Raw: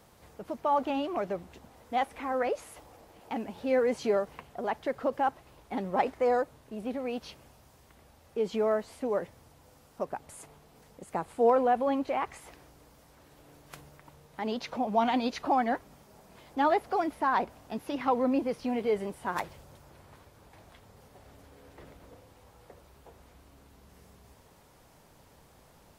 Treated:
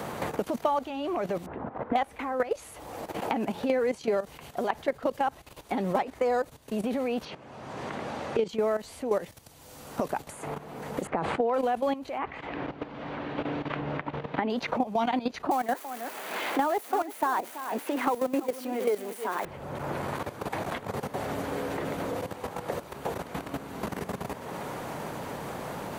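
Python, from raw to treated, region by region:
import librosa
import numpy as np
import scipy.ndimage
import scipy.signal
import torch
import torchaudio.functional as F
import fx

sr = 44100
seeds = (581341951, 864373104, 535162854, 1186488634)

y = fx.chain(x, sr, fx.block_float(bits=7),
    fx.lowpass(hz=1500.0, slope=24), at=(1.46, 1.96))
y = fx.chain(y, sr, fx.highpass(hz=120.0, slope=12),
    fx.air_absorb(metres=92.0), at=(7.25, 8.49))
y = fx.chain(y, sr, fx.lowpass(hz=2900.0, slope=12),
    fx.sustainer(db_per_s=68.0), at=(11.07, 11.54))
y = fx.chain(y, sr, fx.lowpass(hz=3100.0, slope=24),
    fx.peak_eq(hz=270.0, db=8.0, octaves=0.2), at=(12.18, 14.5))
y = fx.chain(y, sr, fx.crossing_spikes(level_db=-25.5),
    fx.highpass(hz=260.0, slope=24),
    fx.echo_single(ms=332, db=-12.0), at=(15.51, 19.45))
y = fx.level_steps(y, sr, step_db=14)
y = fx.notch(y, sr, hz=5200.0, q=16.0)
y = fx.band_squash(y, sr, depth_pct=100)
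y = y * 10.0 ** (5.5 / 20.0)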